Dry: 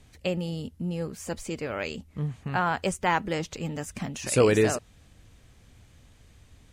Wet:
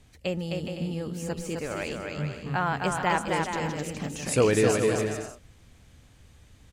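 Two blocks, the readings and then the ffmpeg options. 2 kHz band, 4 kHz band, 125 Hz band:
+0.5 dB, +0.5 dB, +0.5 dB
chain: -af "aecho=1:1:260|416|509.6|565.8|599.5:0.631|0.398|0.251|0.158|0.1,volume=-1.5dB"

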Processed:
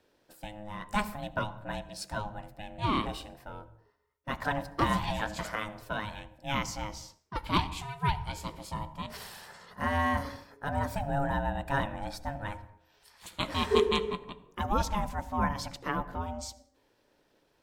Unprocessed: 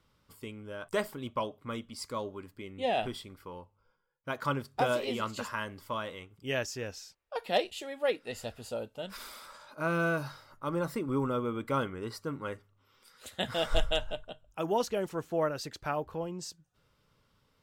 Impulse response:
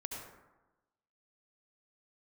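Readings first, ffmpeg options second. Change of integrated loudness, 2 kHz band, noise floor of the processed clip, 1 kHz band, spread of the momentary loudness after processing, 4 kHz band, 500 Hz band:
+1.0 dB, +1.5 dB, −70 dBFS, +4.0 dB, 16 LU, +1.0 dB, −2.5 dB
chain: -filter_complex "[0:a]bandreject=frequency=71.91:width_type=h:width=4,bandreject=frequency=143.82:width_type=h:width=4,bandreject=frequency=215.73:width_type=h:width=4,bandreject=frequency=287.64:width_type=h:width=4,bandreject=frequency=359.55:width_type=h:width=4,bandreject=frequency=431.46:width_type=h:width=4,bandreject=frequency=503.37:width_type=h:width=4,bandreject=frequency=575.28:width_type=h:width=4,aeval=exprs='val(0)*sin(2*PI*420*n/s)':channel_layout=same,asplit=2[link_01][link_02];[1:a]atrim=start_sample=2205,afade=type=out:start_time=0.33:duration=0.01,atrim=end_sample=14994,lowshelf=frequency=160:gain=10[link_03];[link_02][link_03]afir=irnorm=-1:irlink=0,volume=-13dB[link_04];[link_01][link_04]amix=inputs=2:normalize=0,volume=2.5dB"

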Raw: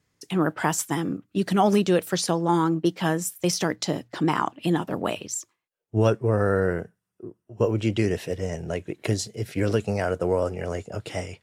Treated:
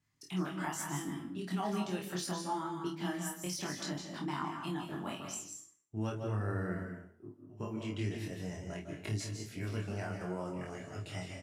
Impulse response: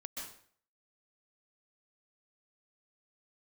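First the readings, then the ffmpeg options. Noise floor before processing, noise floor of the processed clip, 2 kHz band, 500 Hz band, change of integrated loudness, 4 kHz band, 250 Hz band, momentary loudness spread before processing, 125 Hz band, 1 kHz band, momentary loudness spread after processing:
−80 dBFS, −62 dBFS, −11.5 dB, −17.5 dB, −13.5 dB, −11.0 dB, −13.0 dB, 11 LU, −11.5 dB, −13.0 dB, 7 LU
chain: -filter_complex "[0:a]equalizer=frequency=500:width_type=o:width=0.38:gain=-13,acompressor=threshold=-35dB:ratio=1.5,flanger=delay=20:depth=2.3:speed=1.1,asplit=2[link_01][link_02];[link_02]adelay=27,volume=-11dB[link_03];[link_01][link_03]amix=inputs=2:normalize=0,asplit=2[link_04][link_05];[1:a]atrim=start_sample=2205,adelay=28[link_06];[link_05][link_06]afir=irnorm=-1:irlink=0,volume=0.5dB[link_07];[link_04][link_07]amix=inputs=2:normalize=0,volume=-6.5dB"

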